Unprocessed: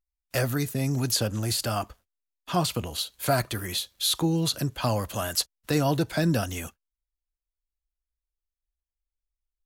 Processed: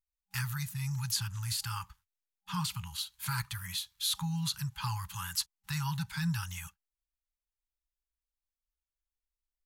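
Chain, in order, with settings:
brick-wall band-stop 190–810 Hz
level −6.5 dB

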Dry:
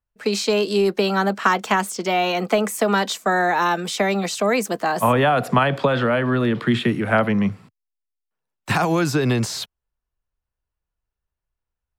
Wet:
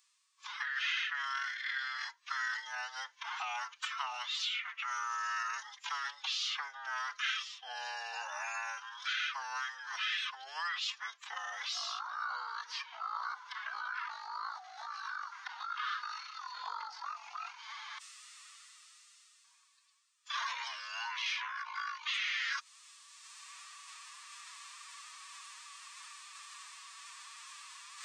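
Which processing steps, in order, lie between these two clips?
reversed playback
upward compression, threshold −24 dBFS
reversed playback
parametric band 3,500 Hz −6.5 dB 1.5 octaves
wrong playback speed 78 rpm record played at 33 rpm
Butterworth high-pass 1,100 Hz 36 dB per octave
phase-vocoder pitch shift with formants kept +7.5 semitones
transient designer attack 0 dB, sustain +4 dB
multiband upward and downward compressor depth 70%

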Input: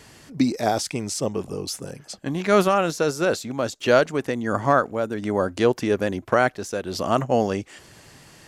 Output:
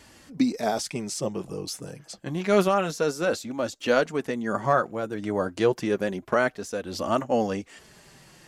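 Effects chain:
flanger 0.28 Hz, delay 3.3 ms, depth 3.3 ms, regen −34%

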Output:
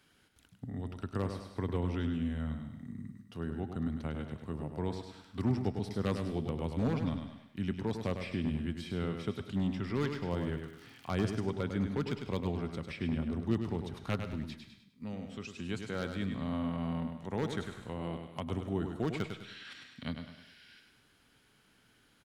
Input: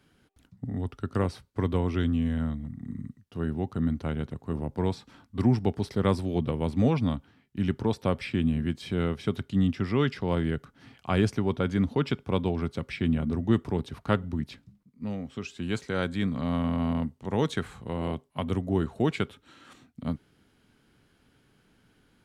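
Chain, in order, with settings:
wavefolder on the positive side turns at −17 dBFS
0:10.33–0:11.14: surface crackle 89 per second −45 dBFS
0:19.34–0:20.80: gain on a spectral selection 1,400–5,800 Hz +12 dB
repeating echo 101 ms, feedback 34%, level −7 dB
convolution reverb RT60 0.45 s, pre-delay 100 ms, DRR 14.5 dB
one half of a high-frequency compander encoder only
level −8 dB

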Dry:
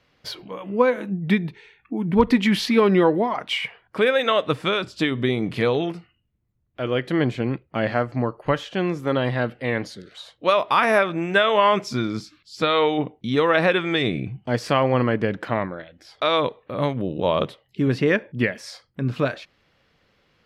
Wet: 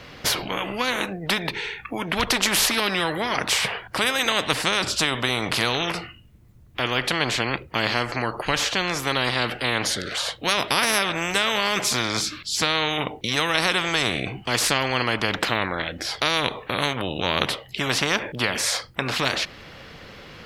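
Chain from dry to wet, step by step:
every bin compressed towards the loudest bin 4 to 1

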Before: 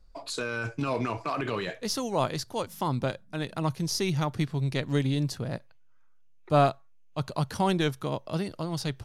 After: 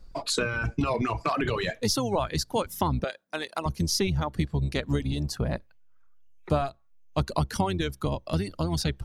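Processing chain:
sub-octave generator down 1 octave, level −2 dB
downward compressor 12 to 1, threshold −29 dBFS, peak gain reduction 14.5 dB
reverb reduction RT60 1.2 s
0:03.04–0:03.66: high-pass filter 500 Hz 12 dB per octave
0:07.75–0:08.65: parametric band 820 Hz −3 dB 2 octaves
level +8 dB

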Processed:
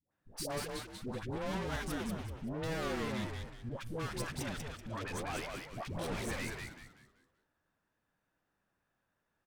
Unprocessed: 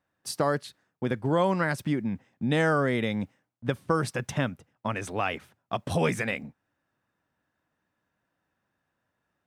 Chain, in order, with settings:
tube saturation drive 37 dB, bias 0.8
all-pass dispersion highs, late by 119 ms, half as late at 640 Hz
echo with shifted repeats 190 ms, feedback 35%, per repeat −120 Hz, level −3.5 dB

